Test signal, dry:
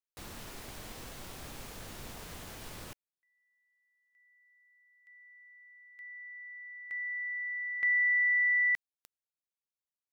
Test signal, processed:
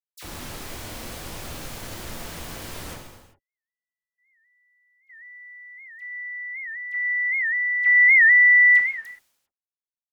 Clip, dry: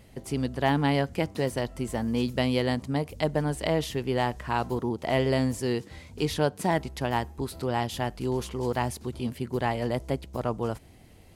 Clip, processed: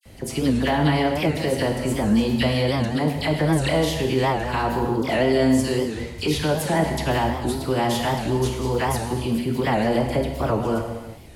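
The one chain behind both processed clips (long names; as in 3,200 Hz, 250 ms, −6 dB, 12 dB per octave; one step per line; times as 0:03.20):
all-pass dispersion lows, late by 59 ms, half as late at 1,900 Hz
brickwall limiter −21.5 dBFS
downward expander −59 dBFS
reverb whose tail is shaped and stops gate 420 ms falling, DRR 2 dB
wow of a warped record 78 rpm, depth 160 cents
level +7.5 dB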